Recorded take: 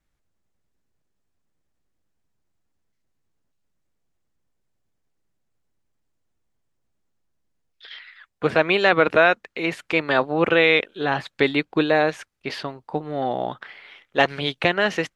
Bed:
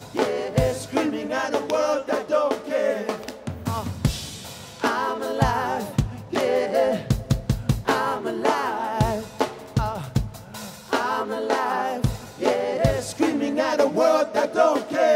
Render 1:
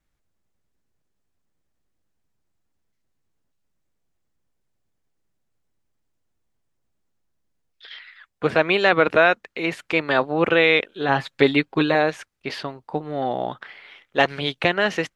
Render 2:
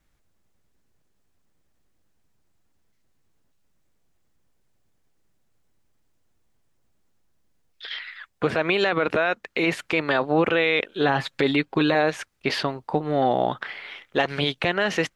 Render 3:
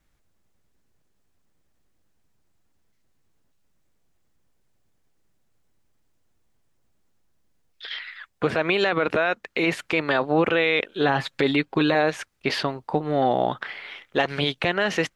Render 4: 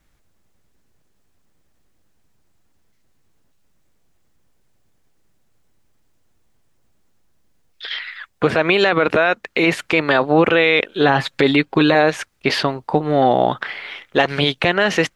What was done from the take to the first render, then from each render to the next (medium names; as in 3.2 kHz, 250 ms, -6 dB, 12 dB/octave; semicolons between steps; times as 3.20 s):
11.08–11.95 s: comb 7.4 ms
in parallel at +1 dB: compression, threshold -27 dBFS, peak gain reduction 15.5 dB; on the sum: peak limiter -10 dBFS, peak gain reduction 9.5 dB
no audible change
trim +6.5 dB